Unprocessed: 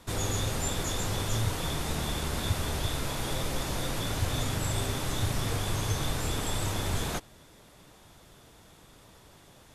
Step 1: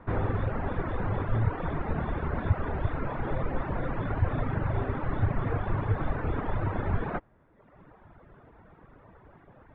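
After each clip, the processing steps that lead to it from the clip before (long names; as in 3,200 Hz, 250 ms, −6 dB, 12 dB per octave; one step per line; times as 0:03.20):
inverse Chebyshev low-pass filter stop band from 7,400 Hz, stop band 70 dB
reverb reduction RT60 1.1 s
level +5 dB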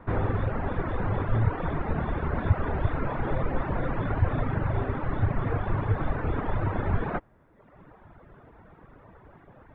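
speech leveller 2 s
level +2 dB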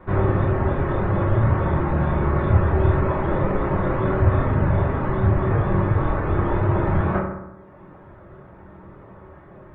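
convolution reverb RT60 0.95 s, pre-delay 3 ms, DRR −5 dB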